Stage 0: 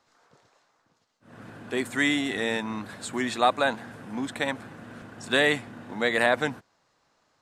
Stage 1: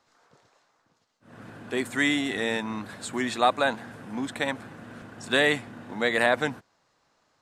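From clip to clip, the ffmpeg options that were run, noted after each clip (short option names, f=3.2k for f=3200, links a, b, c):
-af anull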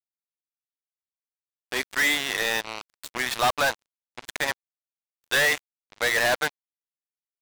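-af "highpass=690,lowpass=6.2k,acrusher=bits=4:mix=0:aa=0.5,volume=25.5dB,asoftclip=hard,volume=-25.5dB,volume=7.5dB"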